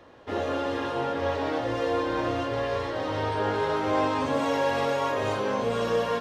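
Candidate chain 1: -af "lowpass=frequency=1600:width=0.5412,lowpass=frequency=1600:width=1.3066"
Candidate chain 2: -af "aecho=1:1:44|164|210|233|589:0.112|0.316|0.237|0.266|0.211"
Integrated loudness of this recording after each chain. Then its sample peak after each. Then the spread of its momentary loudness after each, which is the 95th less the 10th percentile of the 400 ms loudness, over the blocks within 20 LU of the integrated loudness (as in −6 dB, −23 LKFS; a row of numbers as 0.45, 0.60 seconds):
−28.0, −26.5 LKFS; −14.5, −13.0 dBFS; 4, 4 LU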